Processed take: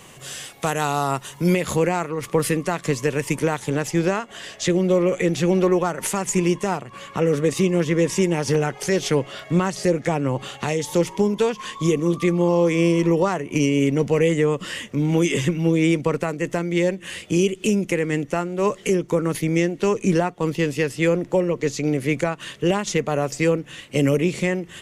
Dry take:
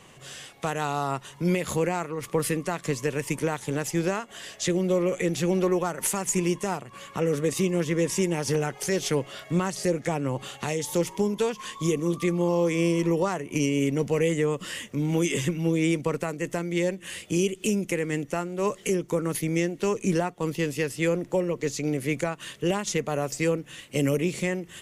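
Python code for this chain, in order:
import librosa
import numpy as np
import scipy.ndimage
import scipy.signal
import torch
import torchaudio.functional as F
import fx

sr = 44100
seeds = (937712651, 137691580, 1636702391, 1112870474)

y = fx.high_shelf(x, sr, hz=8500.0, db=fx.steps((0.0, 9.0), (1.53, -4.0), (3.68, -10.5)))
y = y * 10.0 ** (5.5 / 20.0)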